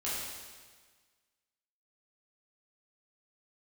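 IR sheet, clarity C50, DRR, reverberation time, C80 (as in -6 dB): -2.0 dB, -9.5 dB, 1.5 s, 1.0 dB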